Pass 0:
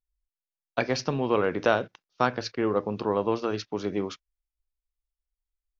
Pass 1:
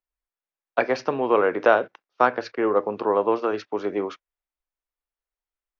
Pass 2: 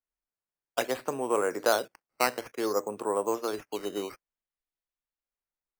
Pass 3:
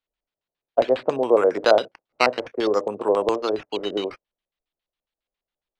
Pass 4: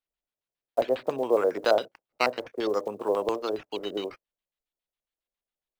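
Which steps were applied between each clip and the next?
three-band isolator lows -18 dB, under 300 Hz, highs -15 dB, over 2.4 kHz; trim +6.5 dB
decimation with a swept rate 9×, swing 100% 0.57 Hz; trim -7.5 dB
LFO low-pass square 7.3 Hz 600–3500 Hz; trim +6 dB
block-companded coder 7-bit; trim -6 dB

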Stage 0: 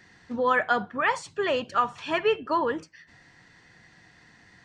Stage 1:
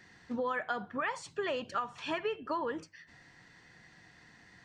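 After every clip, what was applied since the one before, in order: hum notches 50/100 Hz; compression 6:1, threshold -28 dBFS, peak gain reduction 10 dB; trim -3 dB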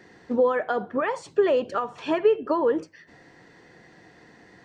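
peaking EQ 430 Hz +14.5 dB 1.9 oct; trim +1.5 dB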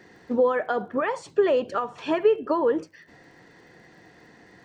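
crackle 58 per s -55 dBFS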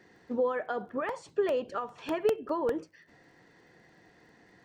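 crackling interface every 0.20 s, samples 64, repeat, from 0.89 s; trim -7.5 dB

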